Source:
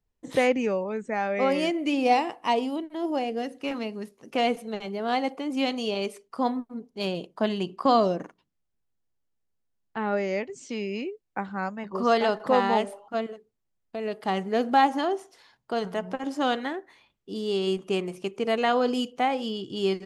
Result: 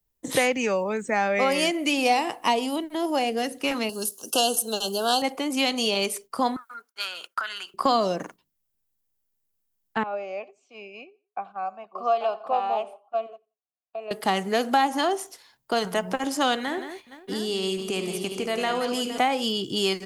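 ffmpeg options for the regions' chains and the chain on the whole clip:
ffmpeg -i in.wav -filter_complex "[0:a]asettb=1/sr,asplit=3[link_01][link_02][link_03];[link_01]atrim=end=3.894[link_04];[link_02]atrim=start=3.89:end=5.22,asetpts=PTS-STARTPTS,afade=type=in:duration=0.004:curve=qsin,afade=type=out:start_time=1.326:duration=0.004:curve=qsin,asuperstop=centerf=2100:order=20:qfactor=2.1,bass=frequency=250:gain=-9,treble=frequency=4000:gain=14[link_05];[link_03]atrim=start=5.216[link_06];[link_04][link_05]acrossfade=duration=0.004:curve1=hsin:curve2=qsin[link_07];[link_07][link_06]acrossfade=duration=0.004:curve1=qsin:curve2=hsin,asettb=1/sr,asplit=3[link_08][link_09][link_10];[link_08]atrim=end=6.564[link_11];[link_09]atrim=start=6.56:end=7.74,asetpts=PTS-STARTPTS,afade=type=in:duration=0.004:curve=qsin,afade=type=out:start_time=1.176:duration=0.004:curve=qsin,agate=range=-33dB:threshold=-58dB:ratio=3:release=100:detection=peak,acompressor=threshold=-32dB:ratio=16:attack=3.2:release=140:knee=1:detection=peak,highpass=frequency=1400:width_type=q:width=14[link_12];[link_10]atrim=start=7.736[link_13];[link_11][link_12]acrossfade=duration=0.004:curve1=hsin:curve2=qsin[link_14];[link_14][link_13]acrossfade=duration=0.004:curve1=qsin:curve2=hsin,asettb=1/sr,asplit=3[link_15][link_16][link_17];[link_15]atrim=end=10.034[link_18];[link_16]atrim=start=10.03:end=14.11,asetpts=PTS-STARTPTS,afade=type=in:duration=0.004:curve=qsin,afade=type=out:start_time=4.076:duration=0.004:curve=qsin,asplit=3[link_19][link_20][link_21];[link_19]bandpass=frequency=730:width_type=q:width=8,volume=0dB[link_22];[link_20]bandpass=frequency=1090:width_type=q:width=8,volume=-6dB[link_23];[link_21]bandpass=frequency=2440:width_type=q:width=8,volume=-9dB[link_24];[link_22][link_23][link_24]amix=inputs=3:normalize=0,aecho=1:1:88|176:0.0891|0.0276,atrim=end_sample=179928[link_25];[link_17]atrim=start=14.106[link_26];[link_18][link_25]acrossfade=duration=0.004:curve1=hsin:curve2=qsin[link_27];[link_27][link_26]acrossfade=duration=0.004:curve1=qsin:curve2=hsin,asettb=1/sr,asplit=3[link_28][link_29][link_30];[link_28]atrim=end=16.604[link_31];[link_29]atrim=start=16.6:end=19.18,asetpts=PTS-STARTPTS,afade=type=in:duration=0.004:curve=qsin,afade=type=out:start_time=2.576:duration=0.004:curve=qsin,acompressor=threshold=-32dB:ratio=2.5:attack=3.2:release=140:knee=1:detection=peak,aecho=1:1:74|174|463|673:0.282|0.316|0.188|0.282,atrim=end_sample=113778[link_32];[link_30]atrim=start=19.176[link_33];[link_31][link_32]acrossfade=duration=0.004:curve1=hsin:curve2=qsin[link_34];[link_34][link_33]acrossfade=duration=0.004:curve1=qsin:curve2=hsin,aemphasis=mode=production:type=50fm,agate=range=-8dB:threshold=-48dB:ratio=16:detection=peak,acrossover=split=160|630[link_35][link_36][link_37];[link_35]acompressor=threshold=-49dB:ratio=4[link_38];[link_36]acompressor=threshold=-36dB:ratio=4[link_39];[link_37]acompressor=threshold=-28dB:ratio=4[link_40];[link_38][link_39][link_40]amix=inputs=3:normalize=0,volume=7dB" out.wav

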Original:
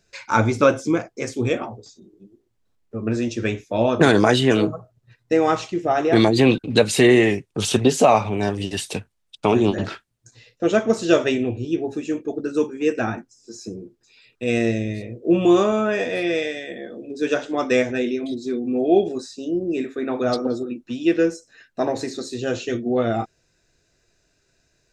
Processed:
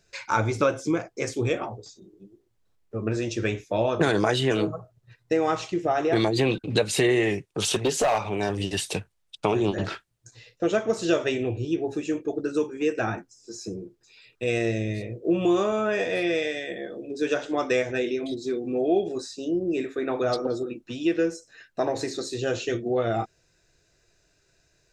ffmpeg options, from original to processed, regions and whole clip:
ffmpeg -i in.wav -filter_complex "[0:a]asettb=1/sr,asplit=3[link_01][link_02][link_03];[link_01]atrim=end=7.454[link_04];[link_02]atrim=start=7.45:end=8.5,asetpts=PTS-STARTPTS,afade=type=in:duration=0.004:curve=qsin,afade=type=out:start_time=1.046:duration=0.004:curve=qsin,lowshelf=frequency=200:gain=-7.5,asoftclip=type=hard:threshold=-12dB[link_05];[link_03]atrim=start=8.496[link_06];[link_04][link_05]acrossfade=duration=0.004:curve1=hsin:curve2=qsin[link_07];[link_07][link_06]acrossfade=duration=0.004:curve1=qsin:curve2=hsin,equalizer=frequency=240:width=6.3:gain=-11,acompressor=threshold=-23dB:ratio=2" out.wav

